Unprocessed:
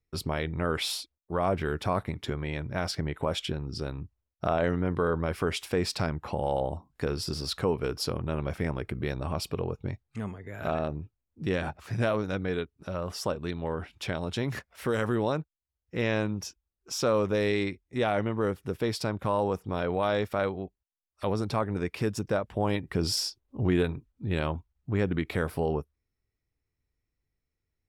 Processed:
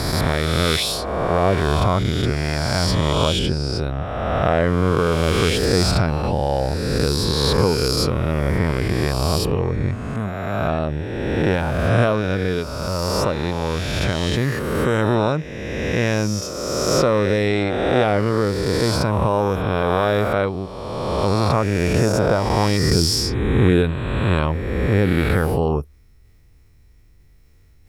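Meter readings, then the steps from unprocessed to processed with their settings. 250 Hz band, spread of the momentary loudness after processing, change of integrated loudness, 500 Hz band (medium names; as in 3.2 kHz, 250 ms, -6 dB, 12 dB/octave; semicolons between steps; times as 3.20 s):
+10.5 dB, 6 LU, +10.5 dB, +10.0 dB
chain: reverse spectral sustain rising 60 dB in 2.12 s; bass shelf 130 Hz +9.5 dB; reverse; upward compressor, threshold -42 dBFS; reverse; trim +5 dB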